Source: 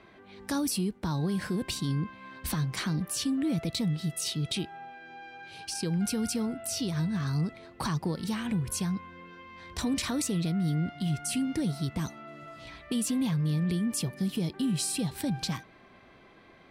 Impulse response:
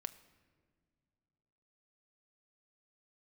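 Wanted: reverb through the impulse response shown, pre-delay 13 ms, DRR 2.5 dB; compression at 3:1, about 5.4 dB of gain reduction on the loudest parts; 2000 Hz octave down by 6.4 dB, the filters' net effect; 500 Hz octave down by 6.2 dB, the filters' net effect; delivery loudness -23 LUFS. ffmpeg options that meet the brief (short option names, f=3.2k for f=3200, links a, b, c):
-filter_complex "[0:a]equalizer=f=500:t=o:g=-8.5,equalizer=f=2k:t=o:g=-8,acompressor=threshold=-34dB:ratio=3,asplit=2[a][b];[1:a]atrim=start_sample=2205,adelay=13[c];[b][c]afir=irnorm=-1:irlink=0,volume=0.5dB[d];[a][d]amix=inputs=2:normalize=0,volume=11dB"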